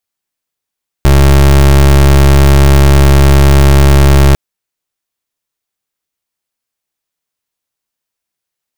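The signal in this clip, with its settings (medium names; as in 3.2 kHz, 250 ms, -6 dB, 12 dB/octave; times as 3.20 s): pulse 69.5 Hz, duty 28% -4.5 dBFS 3.30 s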